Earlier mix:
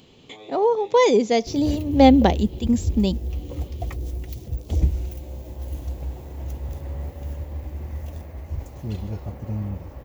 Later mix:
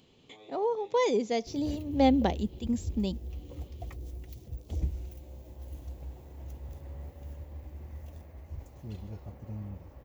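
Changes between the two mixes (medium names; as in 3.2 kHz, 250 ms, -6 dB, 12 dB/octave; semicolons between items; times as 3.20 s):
speech -10.0 dB; background -11.5 dB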